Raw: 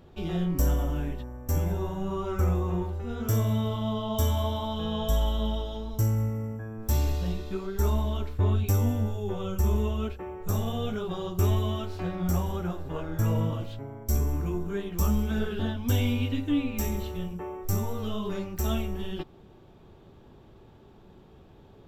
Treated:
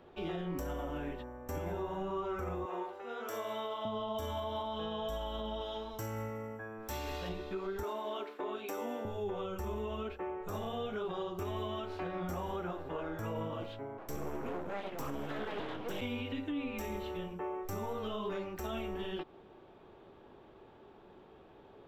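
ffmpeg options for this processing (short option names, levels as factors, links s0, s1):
-filter_complex "[0:a]asettb=1/sr,asplit=3[s0][s1][s2];[s0]atrim=end=2.654[s3];[s1]atrim=start=2.65:end=3.85,asetpts=PTS-STARTPTS,afade=t=in:d=0.004:c=qsin,afade=t=out:st=1.196:d=0.004:c=qsin,highpass=480[s4];[s2]atrim=start=3.846[s5];[s3][s4]acrossfade=d=0.004:c1=hsin:c2=qsin[s6];[s6][s5]acrossfade=d=0.004:c1=qsin:c2=hsin,asettb=1/sr,asplit=3[s7][s8][s9];[s7]atrim=end=5.614[s10];[s8]atrim=start=5.61:end=7.29,asetpts=PTS-STARTPTS,afade=t=in:d=0.004:c=qsin,afade=t=out:st=1.676:d=0.004:c=qsin,tiltshelf=f=770:g=-4[s11];[s9]atrim=start=7.286[s12];[s10][s11]acrossfade=d=0.004:c1=hsin:c2=qsin[s13];[s13][s12]acrossfade=d=0.004:c1=qsin:c2=hsin,asettb=1/sr,asplit=3[s14][s15][s16];[s14]atrim=end=7.834[s17];[s15]atrim=start=7.83:end=9.05,asetpts=PTS-STARTPTS,afade=t=in:d=0.004:c=qsin,afade=t=out:st=1.216:d=0.004:c=qsin,highpass=f=270:w=0.5412,highpass=f=270:w=1.3066[s18];[s16]atrim=start=9.046[s19];[s17][s18]acrossfade=d=0.004:c1=hsin:c2=qsin[s20];[s20][s19]acrossfade=d=0.004:c1=qsin:c2=hsin,asplit=3[s21][s22][s23];[s21]afade=t=out:st=13.97:d=0.02[s24];[s22]aeval=exprs='abs(val(0))':c=same,afade=t=in:st=13.97:d=0.02,afade=t=out:st=16:d=0.02[s25];[s23]afade=t=in:st=16:d=0.02[s26];[s24][s25][s26]amix=inputs=3:normalize=0,acrossover=split=290 3400:gain=0.2 1 0.224[s27][s28][s29];[s27][s28][s29]amix=inputs=3:normalize=0,alimiter=level_in=2.11:limit=0.0631:level=0:latency=1:release=99,volume=0.473,volume=1.12"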